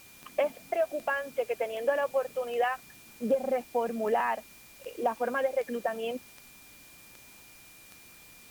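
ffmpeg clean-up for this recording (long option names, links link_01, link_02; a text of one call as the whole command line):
ffmpeg -i in.wav -af "adeclick=threshold=4,bandreject=frequency=2400:width=30,afwtdn=0.002" out.wav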